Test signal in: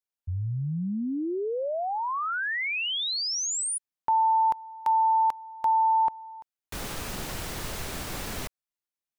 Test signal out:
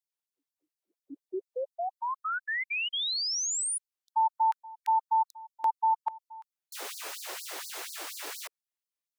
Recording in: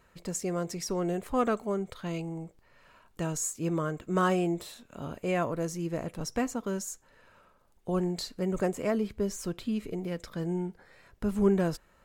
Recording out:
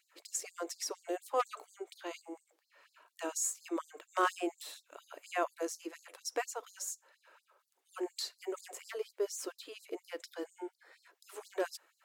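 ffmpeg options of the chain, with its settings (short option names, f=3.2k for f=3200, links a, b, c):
-af "aeval=exprs='0.126*(abs(mod(val(0)/0.126+3,4)-2)-1)':c=same,afftfilt=real='re*gte(b*sr/1024,260*pow(4200/260,0.5+0.5*sin(2*PI*4.2*pts/sr)))':imag='im*gte(b*sr/1024,260*pow(4200/260,0.5+0.5*sin(2*PI*4.2*pts/sr)))':win_size=1024:overlap=0.75,volume=-1.5dB"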